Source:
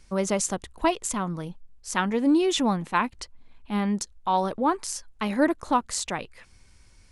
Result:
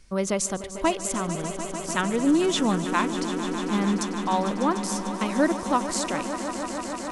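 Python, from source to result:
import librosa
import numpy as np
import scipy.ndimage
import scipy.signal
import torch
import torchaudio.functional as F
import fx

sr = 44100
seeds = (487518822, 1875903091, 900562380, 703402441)

p1 = fx.peak_eq(x, sr, hz=850.0, db=-4.5, octaves=0.26)
y = p1 + fx.echo_swell(p1, sr, ms=149, loudest=5, wet_db=-13, dry=0)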